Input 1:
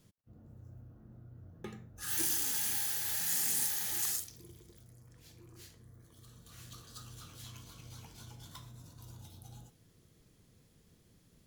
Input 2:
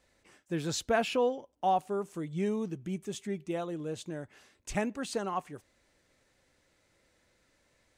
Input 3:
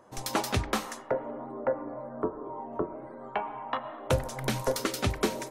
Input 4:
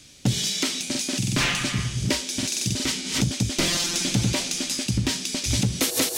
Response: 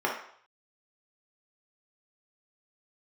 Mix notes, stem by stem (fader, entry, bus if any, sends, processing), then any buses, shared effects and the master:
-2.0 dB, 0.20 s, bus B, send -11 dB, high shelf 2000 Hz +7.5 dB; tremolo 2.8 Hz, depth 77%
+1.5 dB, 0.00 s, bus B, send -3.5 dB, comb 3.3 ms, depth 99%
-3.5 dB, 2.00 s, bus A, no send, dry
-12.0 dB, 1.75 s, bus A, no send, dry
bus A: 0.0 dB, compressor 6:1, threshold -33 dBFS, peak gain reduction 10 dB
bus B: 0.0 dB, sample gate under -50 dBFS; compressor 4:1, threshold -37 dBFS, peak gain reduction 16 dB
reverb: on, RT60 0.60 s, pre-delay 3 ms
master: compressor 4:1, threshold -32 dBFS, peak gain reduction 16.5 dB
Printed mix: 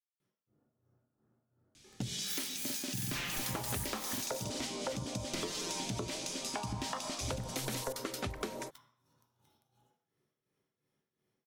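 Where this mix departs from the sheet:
stem 1 -2.0 dB -> -12.0 dB; stem 2: muted; stem 3: entry 2.00 s -> 3.20 s

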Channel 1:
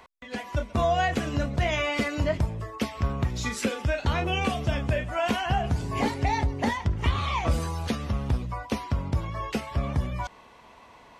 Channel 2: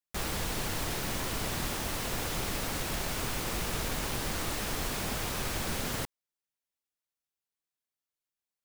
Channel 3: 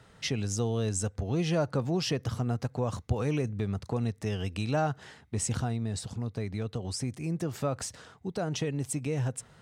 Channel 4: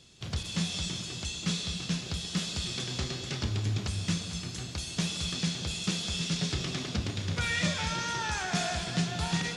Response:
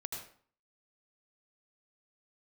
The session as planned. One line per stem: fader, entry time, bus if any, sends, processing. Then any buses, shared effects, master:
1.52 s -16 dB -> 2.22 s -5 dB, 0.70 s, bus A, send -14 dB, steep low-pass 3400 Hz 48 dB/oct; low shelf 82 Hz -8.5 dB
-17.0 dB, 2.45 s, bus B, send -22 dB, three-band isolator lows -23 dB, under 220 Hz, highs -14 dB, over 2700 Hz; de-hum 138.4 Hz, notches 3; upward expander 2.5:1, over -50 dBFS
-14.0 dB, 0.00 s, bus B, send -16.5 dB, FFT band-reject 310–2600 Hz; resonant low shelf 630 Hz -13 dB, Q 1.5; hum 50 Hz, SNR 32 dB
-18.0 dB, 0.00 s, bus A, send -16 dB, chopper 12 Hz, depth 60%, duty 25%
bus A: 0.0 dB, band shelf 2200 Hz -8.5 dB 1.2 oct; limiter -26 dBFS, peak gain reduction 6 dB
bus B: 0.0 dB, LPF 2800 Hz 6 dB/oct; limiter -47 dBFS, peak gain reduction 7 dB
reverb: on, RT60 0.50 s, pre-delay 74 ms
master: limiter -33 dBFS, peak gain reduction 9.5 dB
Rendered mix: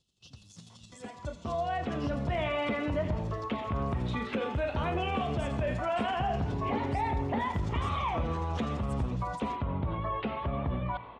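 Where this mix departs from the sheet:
stem 1 -16.0 dB -> -8.5 dB; master: missing limiter -33 dBFS, peak gain reduction 9.5 dB

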